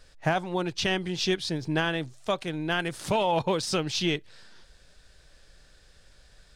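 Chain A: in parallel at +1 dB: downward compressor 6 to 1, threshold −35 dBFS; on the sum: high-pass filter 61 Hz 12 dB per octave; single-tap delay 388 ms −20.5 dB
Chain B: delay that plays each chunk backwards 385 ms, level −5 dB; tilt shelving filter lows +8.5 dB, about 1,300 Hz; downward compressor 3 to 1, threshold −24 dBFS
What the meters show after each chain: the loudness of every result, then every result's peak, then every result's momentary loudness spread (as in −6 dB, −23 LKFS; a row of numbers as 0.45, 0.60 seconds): −25.5, −28.0 LKFS; −10.0, −13.5 dBFS; 6, 4 LU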